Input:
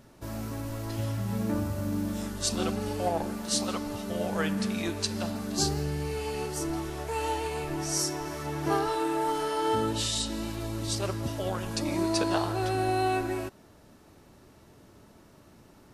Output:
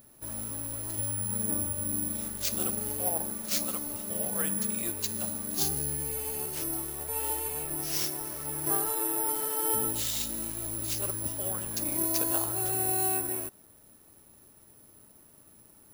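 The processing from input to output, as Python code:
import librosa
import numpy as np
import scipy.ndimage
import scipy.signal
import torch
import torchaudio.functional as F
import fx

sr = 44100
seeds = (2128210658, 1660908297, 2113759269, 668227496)

y = (np.kron(x[::4], np.eye(4)[0]) * 4)[:len(x)]
y = F.gain(torch.from_numpy(y), -7.5).numpy()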